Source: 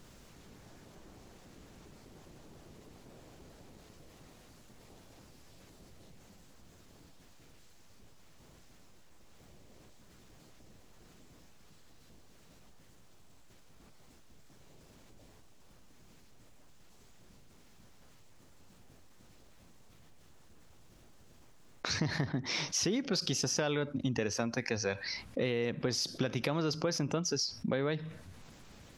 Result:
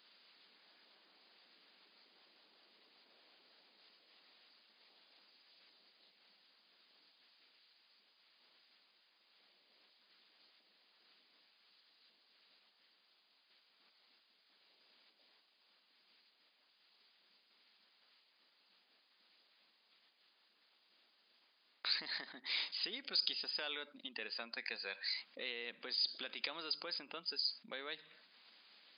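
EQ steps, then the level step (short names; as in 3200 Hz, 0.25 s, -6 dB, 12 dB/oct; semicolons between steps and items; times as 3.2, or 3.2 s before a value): brick-wall FIR band-pass 170–5000 Hz; differentiator; +6.0 dB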